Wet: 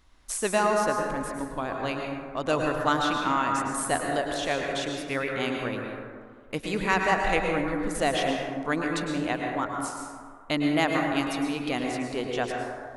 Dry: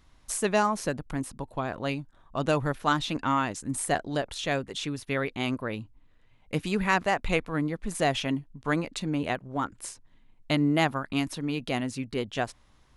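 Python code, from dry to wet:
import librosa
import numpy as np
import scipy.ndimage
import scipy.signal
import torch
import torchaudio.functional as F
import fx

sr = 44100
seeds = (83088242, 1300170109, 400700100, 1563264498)

y = fx.peak_eq(x, sr, hz=140.0, db=-8.0, octaves=1.2)
y = fx.rev_plate(y, sr, seeds[0], rt60_s=1.9, hf_ratio=0.35, predelay_ms=95, drr_db=0.5)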